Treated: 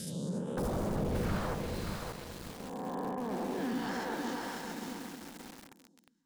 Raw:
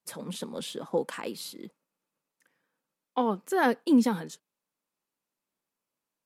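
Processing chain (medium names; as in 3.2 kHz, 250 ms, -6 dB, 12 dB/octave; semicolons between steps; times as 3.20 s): reverse spectral sustain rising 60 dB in 2.15 s; treble shelf 5 kHz -11.5 dB; delay with an opening low-pass 134 ms, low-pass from 400 Hz, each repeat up 2 oct, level -3 dB; reverberation, pre-delay 3 ms, DRR 17.5 dB; 0.57–1.55 s: sine folder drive 18 dB, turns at -11.5 dBFS; phase shifter stages 2, 0.41 Hz, lowest notch 170–4400 Hz; saturation -10 dBFS, distortion -23 dB; low-pass that closes with the level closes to 830 Hz, closed at -15.5 dBFS; peak limiter -22.5 dBFS, peak gain reduction 10 dB; tone controls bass +6 dB, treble +8 dB; bit-crushed delay 577 ms, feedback 55%, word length 6-bit, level -3 dB; trim -8 dB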